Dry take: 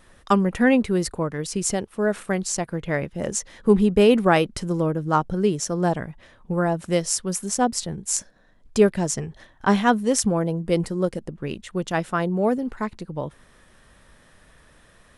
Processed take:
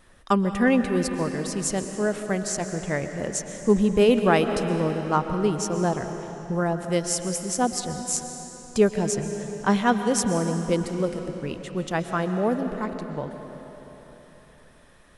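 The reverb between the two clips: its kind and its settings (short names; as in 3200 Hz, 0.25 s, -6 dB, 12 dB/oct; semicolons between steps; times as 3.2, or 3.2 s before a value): digital reverb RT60 3.9 s, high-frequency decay 0.85×, pre-delay 90 ms, DRR 7 dB; gain -2.5 dB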